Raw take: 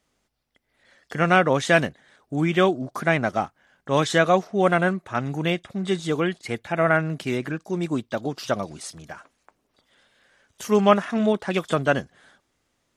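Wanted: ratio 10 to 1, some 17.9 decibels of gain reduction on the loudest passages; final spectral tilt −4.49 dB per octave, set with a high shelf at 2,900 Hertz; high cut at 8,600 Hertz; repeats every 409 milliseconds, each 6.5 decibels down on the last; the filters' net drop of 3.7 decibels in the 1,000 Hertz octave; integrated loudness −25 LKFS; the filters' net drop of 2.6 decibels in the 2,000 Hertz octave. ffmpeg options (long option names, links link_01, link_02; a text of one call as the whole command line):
ffmpeg -i in.wav -af "lowpass=8600,equalizer=frequency=1000:width_type=o:gain=-5.5,equalizer=frequency=2000:width_type=o:gain=-3.5,highshelf=frequency=2900:gain=6.5,acompressor=threshold=-33dB:ratio=10,aecho=1:1:409|818|1227|1636|2045|2454:0.473|0.222|0.105|0.0491|0.0231|0.0109,volume=12dB" out.wav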